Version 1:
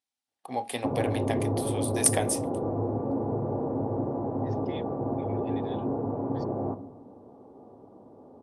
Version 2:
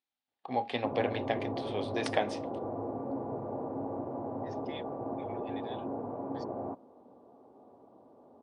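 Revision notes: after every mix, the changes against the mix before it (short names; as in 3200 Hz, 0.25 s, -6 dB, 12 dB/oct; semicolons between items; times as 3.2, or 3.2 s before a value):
first voice: add LPF 4200 Hz 24 dB/oct; background: add low shelf 340 Hz -10 dB; reverb: off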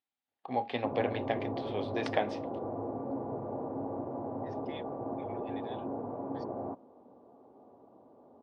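master: add air absorption 130 m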